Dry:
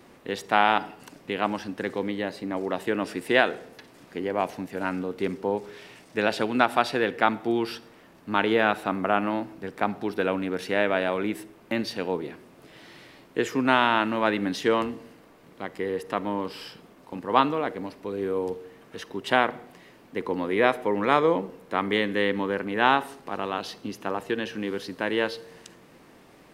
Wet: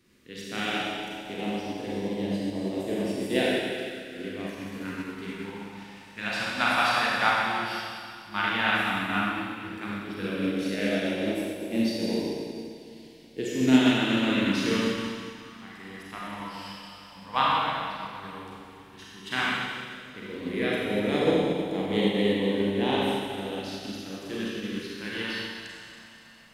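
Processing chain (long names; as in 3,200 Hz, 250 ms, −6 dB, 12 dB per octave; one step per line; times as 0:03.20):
four-comb reverb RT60 3.2 s, combs from 31 ms, DRR −7 dB
all-pass phaser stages 2, 0.1 Hz, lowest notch 370–1,300 Hz
expander for the loud parts 1.5 to 1, over −33 dBFS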